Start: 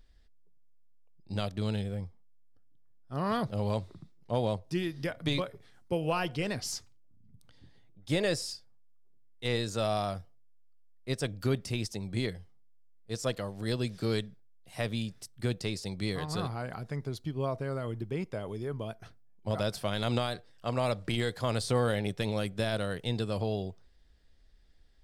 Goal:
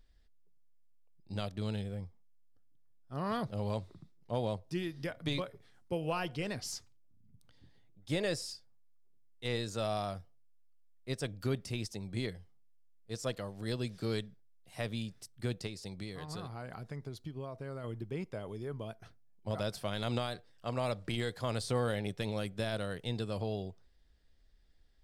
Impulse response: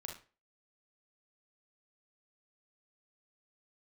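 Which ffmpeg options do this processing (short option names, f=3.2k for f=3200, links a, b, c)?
-filter_complex "[0:a]asettb=1/sr,asplit=3[a][b][c];[a]atrim=end=15.664[d];[b]atrim=start=15.66:end=17.84,asetpts=PTS-STARTPTS,afade=t=in:d=0.004:c=qsin,afade=t=out:st=2.176:d=0.004:c=qsin,acompressor=threshold=-34dB:ratio=6[e];[c]atrim=start=17.836[f];[d][e]acrossfade=d=0.004:c1=hsin:c2=qsin[g];[g][f]acrossfade=d=0.004:c1=qsin:c2=hsin,volume=-4.5dB"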